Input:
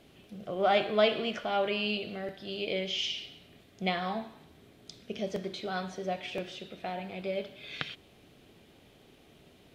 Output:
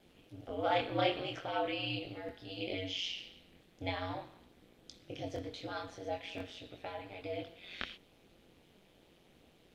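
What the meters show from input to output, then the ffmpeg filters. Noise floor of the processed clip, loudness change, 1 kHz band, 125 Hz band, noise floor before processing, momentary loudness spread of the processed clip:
-65 dBFS, -6.0 dB, -5.0 dB, -2.0 dB, -59 dBFS, 18 LU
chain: -af "flanger=delay=18.5:depth=5.9:speed=0.43,aeval=exprs='val(0)*sin(2*PI*90*n/s)':c=same"

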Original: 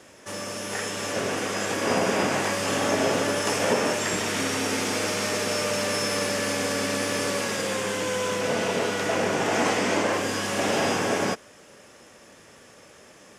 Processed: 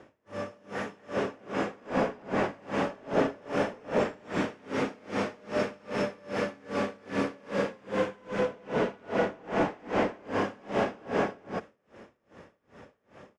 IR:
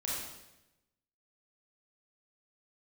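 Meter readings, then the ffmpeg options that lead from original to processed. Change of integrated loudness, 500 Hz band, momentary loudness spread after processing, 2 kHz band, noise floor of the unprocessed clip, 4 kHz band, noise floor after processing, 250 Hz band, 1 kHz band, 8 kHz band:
-6.5 dB, -4.5 dB, 4 LU, -9.0 dB, -51 dBFS, -15.5 dB, -70 dBFS, -3.5 dB, -5.5 dB, -24.0 dB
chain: -filter_complex "[0:a]asoftclip=type=tanh:threshold=-21.5dB,lowpass=f=1.4k:p=1,aemphasis=mode=reproduction:type=50kf,asplit=2[a][b];[b]aecho=0:1:58.31|244.9:0.631|1[c];[a][c]amix=inputs=2:normalize=0,aeval=exprs='val(0)*pow(10,-29*(0.5-0.5*cos(2*PI*2.5*n/s))/20)':c=same,volume=1.5dB"

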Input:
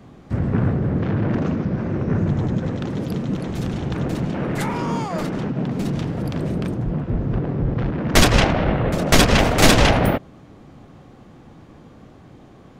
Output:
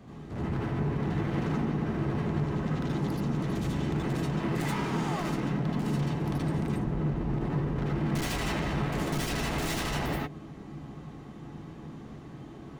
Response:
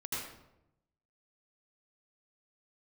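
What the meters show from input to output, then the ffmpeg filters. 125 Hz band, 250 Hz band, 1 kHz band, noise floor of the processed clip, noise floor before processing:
-8.5 dB, -8.5 dB, -10.5 dB, -45 dBFS, -46 dBFS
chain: -filter_complex "[0:a]alimiter=limit=-10.5dB:level=0:latency=1:release=202,volume=29.5dB,asoftclip=hard,volume=-29.5dB[a];[1:a]atrim=start_sample=2205,atrim=end_sample=4410[b];[a][b]afir=irnorm=-1:irlink=0"

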